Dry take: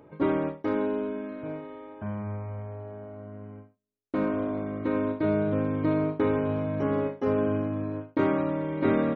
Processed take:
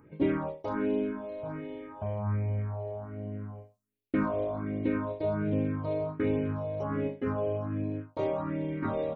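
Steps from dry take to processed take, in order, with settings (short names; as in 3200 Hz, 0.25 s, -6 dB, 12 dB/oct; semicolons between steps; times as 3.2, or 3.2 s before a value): vocal rider within 5 dB 2 s; phaser stages 4, 1.3 Hz, lowest notch 230–1300 Hz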